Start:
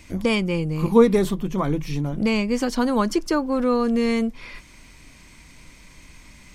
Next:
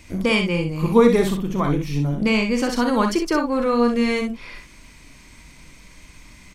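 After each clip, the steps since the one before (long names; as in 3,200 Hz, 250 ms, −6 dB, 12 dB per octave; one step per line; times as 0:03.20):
dynamic equaliser 2,200 Hz, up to +4 dB, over −36 dBFS, Q 0.75
on a send: ambience of single reflections 42 ms −9 dB, 63 ms −6.5 dB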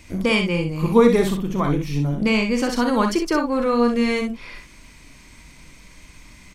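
no processing that can be heard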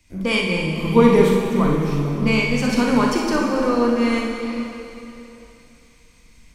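dense smooth reverb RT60 4.2 s, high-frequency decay 0.95×, DRR 0 dB
multiband upward and downward expander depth 40%
level −2 dB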